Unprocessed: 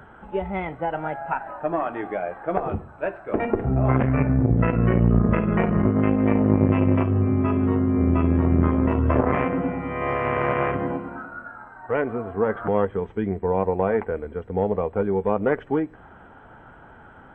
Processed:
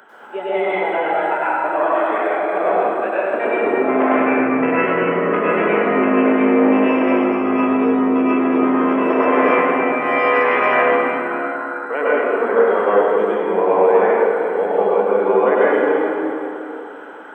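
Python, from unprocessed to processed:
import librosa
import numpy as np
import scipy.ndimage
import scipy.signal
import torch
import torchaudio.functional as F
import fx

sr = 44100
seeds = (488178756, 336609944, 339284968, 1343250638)

y = scipy.signal.sosfilt(scipy.signal.butter(4, 290.0, 'highpass', fs=sr, output='sos'), x)
y = fx.high_shelf(y, sr, hz=2400.0, db=10.0)
y = fx.rev_plate(y, sr, seeds[0], rt60_s=3.0, hf_ratio=0.65, predelay_ms=85, drr_db=-9.0)
y = y * 10.0 ** (-1.0 / 20.0)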